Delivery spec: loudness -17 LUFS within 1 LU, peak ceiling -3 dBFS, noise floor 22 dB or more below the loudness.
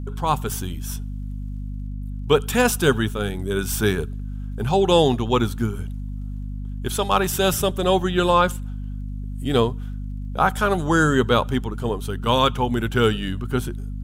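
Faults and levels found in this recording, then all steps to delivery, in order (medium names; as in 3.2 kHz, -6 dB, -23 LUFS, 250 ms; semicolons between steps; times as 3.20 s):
tick rate 20 per s; hum 50 Hz; highest harmonic 250 Hz; hum level -27 dBFS; loudness -21.5 LUFS; peak level -4.0 dBFS; loudness target -17.0 LUFS
-> de-click; de-hum 50 Hz, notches 5; trim +4.5 dB; peak limiter -3 dBFS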